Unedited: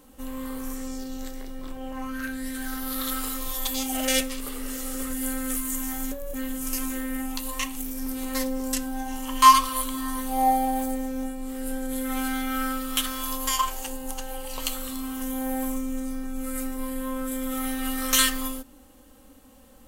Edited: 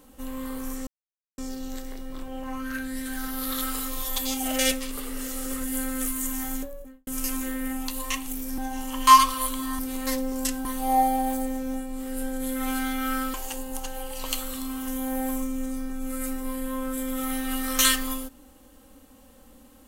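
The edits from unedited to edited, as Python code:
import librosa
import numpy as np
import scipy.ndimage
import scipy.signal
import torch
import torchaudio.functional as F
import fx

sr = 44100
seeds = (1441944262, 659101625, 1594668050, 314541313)

y = fx.studio_fade_out(x, sr, start_s=5.99, length_s=0.57)
y = fx.edit(y, sr, fx.insert_silence(at_s=0.87, length_s=0.51),
    fx.move(start_s=8.07, length_s=0.86, to_s=10.14),
    fx.cut(start_s=12.83, length_s=0.85), tone=tone)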